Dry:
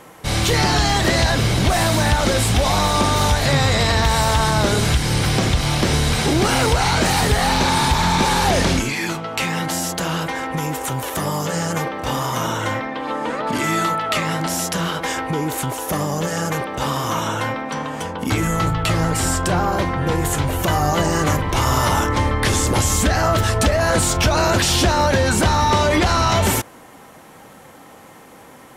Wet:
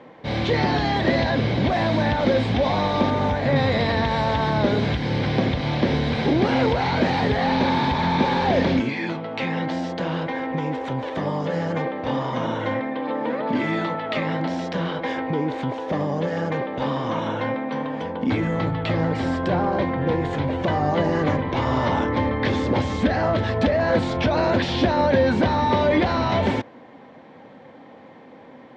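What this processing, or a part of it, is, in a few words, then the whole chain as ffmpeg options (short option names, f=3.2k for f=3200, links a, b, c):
guitar cabinet: -filter_complex "[0:a]highpass=100,equalizer=f=250:t=q:w=4:g=7,equalizer=f=530:t=q:w=4:g=5,equalizer=f=1.3k:t=q:w=4:g=-8,equalizer=f=2.8k:t=q:w=4:g=-6,lowpass=f=3.6k:w=0.5412,lowpass=f=3.6k:w=1.3066,asettb=1/sr,asplit=3[a][b][c];[a]atrim=end=3.104[d];[b]atrim=start=3.1:end=3.56,asetpts=PTS-STARTPTS,afade=t=in:d=0.004:c=qsin,afade=t=out:st=0.456:d=0.004:c=qsin,equalizer=f=4.2k:t=o:w=1.2:g=-7[e];[c]atrim=start=3.556[f];[d][e]acrossfade=d=0.004:c1=hsin:c2=qsin[g];[g][f]acrossfade=d=0.004:c1=qsin:c2=hsin,volume=-3dB"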